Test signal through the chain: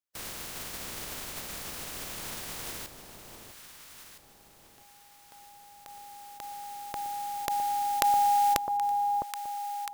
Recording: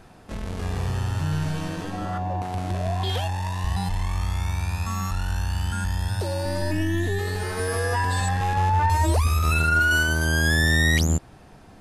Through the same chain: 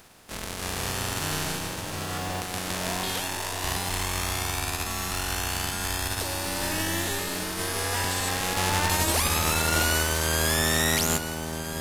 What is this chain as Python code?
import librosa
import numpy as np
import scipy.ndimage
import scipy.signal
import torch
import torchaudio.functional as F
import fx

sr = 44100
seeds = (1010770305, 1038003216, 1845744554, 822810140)

p1 = fx.spec_flatten(x, sr, power=0.42)
p2 = p1 + fx.echo_alternate(p1, sr, ms=658, hz=950.0, feedback_pct=58, wet_db=-5.5, dry=0)
y = F.gain(torch.from_numpy(p2), -4.5).numpy()